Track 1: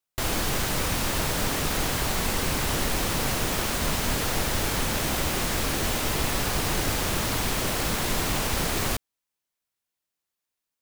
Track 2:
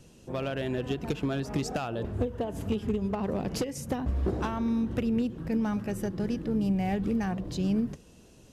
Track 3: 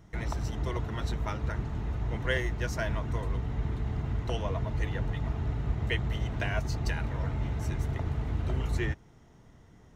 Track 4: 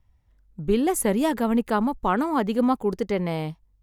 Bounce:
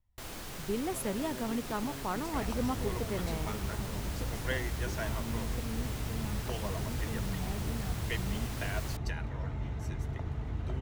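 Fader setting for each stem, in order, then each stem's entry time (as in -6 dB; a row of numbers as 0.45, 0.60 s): -16.5, -14.5, -5.0, -12.5 dB; 0.00, 0.60, 2.20, 0.00 s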